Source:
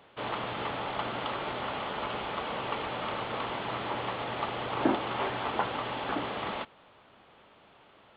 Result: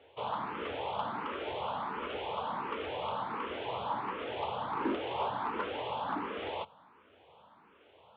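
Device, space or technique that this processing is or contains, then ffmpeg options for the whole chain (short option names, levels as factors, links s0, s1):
barber-pole phaser into a guitar amplifier: -filter_complex "[0:a]asplit=2[s0][s1];[s1]afreqshift=1.4[s2];[s0][s2]amix=inputs=2:normalize=1,asoftclip=type=tanh:threshold=0.0501,highpass=77,equalizer=f=85:t=q:w=4:g=8,equalizer=f=120:t=q:w=4:g=-5,equalizer=f=470:t=q:w=4:g=5,equalizer=f=950:t=q:w=4:g=6,equalizer=f=1900:t=q:w=4:g=-4,lowpass=f=3900:w=0.5412,lowpass=f=3900:w=1.3066,volume=0.891"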